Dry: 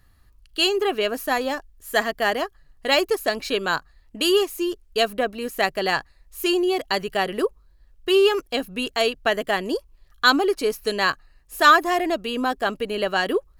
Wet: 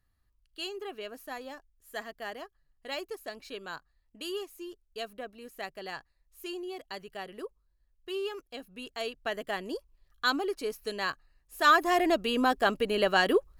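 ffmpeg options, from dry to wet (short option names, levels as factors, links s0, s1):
-af "volume=0.794,afade=t=in:st=8.67:d=0.82:silence=0.473151,afade=t=in:st=11.56:d=0.52:silence=0.354813"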